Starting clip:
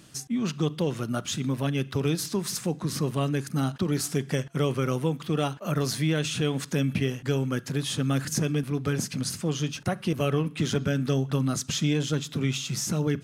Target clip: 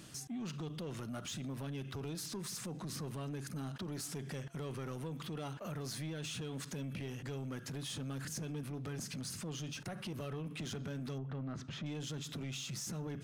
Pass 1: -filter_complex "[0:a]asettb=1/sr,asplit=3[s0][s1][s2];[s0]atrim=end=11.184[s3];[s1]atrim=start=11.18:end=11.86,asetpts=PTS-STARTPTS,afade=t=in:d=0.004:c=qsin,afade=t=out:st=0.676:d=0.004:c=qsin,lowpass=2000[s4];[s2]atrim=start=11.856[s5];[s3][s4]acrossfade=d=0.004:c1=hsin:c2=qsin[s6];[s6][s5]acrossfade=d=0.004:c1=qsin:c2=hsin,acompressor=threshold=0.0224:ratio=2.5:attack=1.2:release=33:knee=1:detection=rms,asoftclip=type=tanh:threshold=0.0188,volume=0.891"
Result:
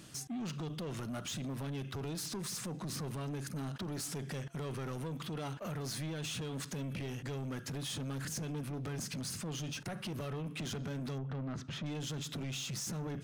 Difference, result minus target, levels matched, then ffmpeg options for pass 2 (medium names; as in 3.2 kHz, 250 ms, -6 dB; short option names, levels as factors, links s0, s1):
compression: peak gain reduction -4.5 dB
-filter_complex "[0:a]asettb=1/sr,asplit=3[s0][s1][s2];[s0]atrim=end=11.184[s3];[s1]atrim=start=11.18:end=11.86,asetpts=PTS-STARTPTS,afade=t=in:d=0.004:c=qsin,afade=t=out:st=0.676:d=0.004:c=qsin,lowpass=2000[s4];[s2]atrim=start=11.856[s5];[s3][s4]acrossfade=d=0.004:c1=hsin:c2=qsin[s6];[s6][s5]acrossfade=d=0.004:c1=qsin:c2=hsin,acompressor=threshold=0.00944:ratio=2.5:attack=1.2:release=33:knee=1:detection=rms,asoftclip=type=tanh:threshold=0.0188,volume=0.891"